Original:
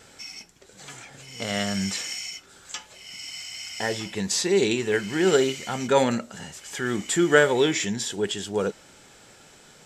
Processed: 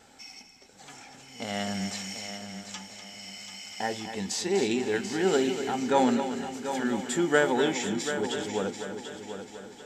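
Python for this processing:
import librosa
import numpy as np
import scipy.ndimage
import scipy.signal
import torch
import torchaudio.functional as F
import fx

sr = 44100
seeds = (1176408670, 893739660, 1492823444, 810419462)

p1 = fx.graphic_eq_31(x, sr, hz=(125, 250, 800, 10000), db=(-6, 9, 10, -4))
p2 = p1 + fx.echo_heads(p1, sr, ms=246, heads='first and third', feedback_pct=52, wet_db=-10, dry=0)
y = p2 * 10.0 ** (-6.5 / 20.0)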